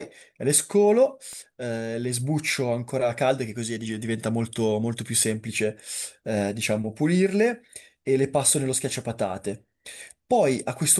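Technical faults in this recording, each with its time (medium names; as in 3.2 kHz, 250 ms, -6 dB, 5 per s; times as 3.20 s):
1.33 s: pop -27 dBFS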